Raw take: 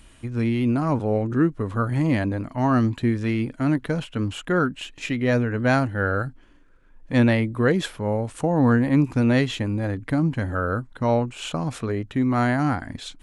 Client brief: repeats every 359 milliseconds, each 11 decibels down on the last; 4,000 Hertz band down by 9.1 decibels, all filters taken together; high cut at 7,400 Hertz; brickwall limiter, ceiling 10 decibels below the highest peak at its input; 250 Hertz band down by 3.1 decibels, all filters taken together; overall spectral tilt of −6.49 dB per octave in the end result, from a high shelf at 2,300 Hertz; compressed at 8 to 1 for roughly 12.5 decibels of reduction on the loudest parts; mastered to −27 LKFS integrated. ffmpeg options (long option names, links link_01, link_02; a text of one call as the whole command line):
ffmpeg -i in.wav -af "lowpass=7400,equalizer=frequency=250:width_type=o:gain=-3.5,highshelf=frequency=2300:gain=-8.5,equalizer=frequency=4000:width_type=o:gain=-4.5,acompressor=threshold=-29dB:ratio=8,alimiter=level_in=5dB:limit=-24dB:level=0:latency=1,volume=-5dB,aecho=1:1:359|718|1077:0.282|0.0789|0.0221,volume=10.5dB" out.wav